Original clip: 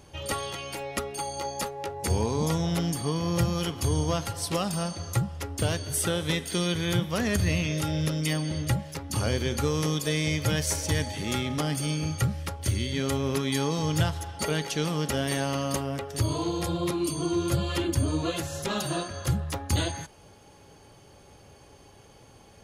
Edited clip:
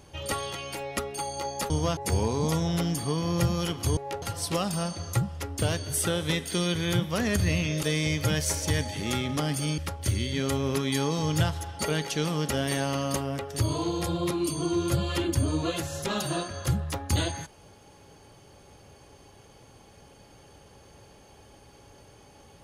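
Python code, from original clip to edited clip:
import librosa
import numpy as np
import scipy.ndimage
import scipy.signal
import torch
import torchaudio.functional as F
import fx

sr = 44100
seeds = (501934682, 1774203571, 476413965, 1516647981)

y = fx.edit(x, sr, fx.swap(start_s=1.7, length_s=0.25, other_s=3.95, other_length_s=0.27),
    fx.cut(start_s=7.83, length_s=2.21),
    fx.cut(start_s=11.99, length_s=0.39), tone=tone)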